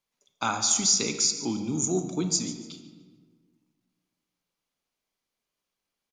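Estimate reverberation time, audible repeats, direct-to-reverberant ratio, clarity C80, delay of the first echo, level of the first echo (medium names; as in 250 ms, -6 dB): 1.5 s, 2, 7.0 dB, 9.0 dB, 145 ms, -16.0 dB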